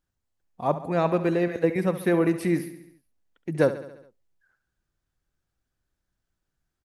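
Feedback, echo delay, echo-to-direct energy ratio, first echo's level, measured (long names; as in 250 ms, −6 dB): 59%, 69 ms, −11.0 dB, −13.0 dB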